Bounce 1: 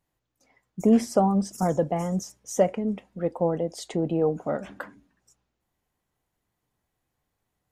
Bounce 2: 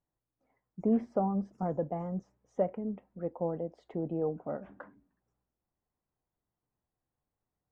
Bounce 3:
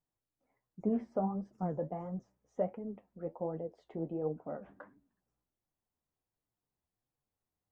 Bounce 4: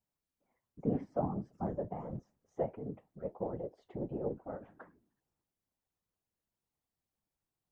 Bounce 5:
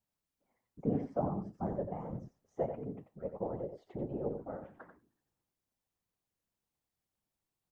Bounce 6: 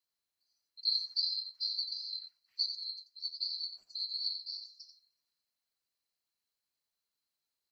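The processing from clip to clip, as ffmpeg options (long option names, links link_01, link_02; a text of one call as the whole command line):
ffmpeg -i in.wav -af "lowpass=1300,volume=-8.5dB" out.wav
ffmpeg -i in.wav -af "flanger=delay=5.9:depth=8.6:regen=51:speed=1.4:shape=triangular" out.wav
ffmpeg -i in.wav -af "afftfilt=real='hypot(re,im)*cos(2*PI*random(0))':imag='hypot(re,im)*sin(2*PI*random(1))':win_size=512:overlap=0.75,volume=5dB" out.wav
ffmpeg -i in.wav -af "aecho=1:1:89:0.398" out.wav
ffmpeg -i in.wav -af "afftfilt=real='real(if(lt(b,736),b+184*(1-2*mod(floor(b/184),2)),b),0)':imag='imag(if(lt(b,736),b+184*(1-2*mod(floor(b/184),2)),b),0)':win_size=2048:overlap=0.75" out.wav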